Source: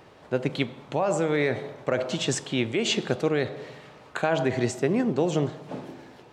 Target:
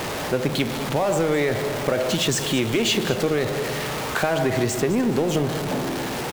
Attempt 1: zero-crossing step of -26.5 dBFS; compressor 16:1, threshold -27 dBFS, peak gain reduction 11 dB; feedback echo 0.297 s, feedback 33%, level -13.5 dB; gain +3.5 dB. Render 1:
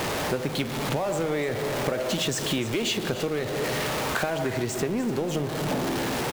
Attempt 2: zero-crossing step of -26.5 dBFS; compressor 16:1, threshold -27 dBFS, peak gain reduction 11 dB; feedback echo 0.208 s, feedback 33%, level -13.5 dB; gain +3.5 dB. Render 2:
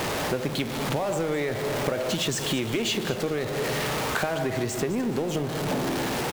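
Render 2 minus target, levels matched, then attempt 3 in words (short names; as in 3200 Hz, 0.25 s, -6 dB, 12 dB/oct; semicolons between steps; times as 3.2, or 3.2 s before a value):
compressor: peak gain reduction +6 dB
zero-crossing step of -26.5 dBFS; compressor 16:1, threshold -20.5 dBFS, peak gain reduction 5 dB; feedback echo 0.208 s, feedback 33%, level -13.5 dB; gain +3.5 dB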